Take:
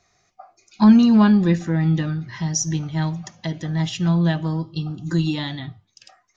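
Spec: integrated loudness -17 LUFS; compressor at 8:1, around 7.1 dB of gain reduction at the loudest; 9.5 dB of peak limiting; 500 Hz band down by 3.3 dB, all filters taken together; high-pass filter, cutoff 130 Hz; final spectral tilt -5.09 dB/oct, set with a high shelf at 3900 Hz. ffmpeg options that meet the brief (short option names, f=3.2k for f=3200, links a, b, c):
-af "highpass=130,equalizer=f=500:t=o:g=-5,highshelf=f=3.9k:g=7,acompressor=threshold=-16dB:ratio=8,volume=9.5dB,alimiter=limit=-8dB:level=0:latency=1"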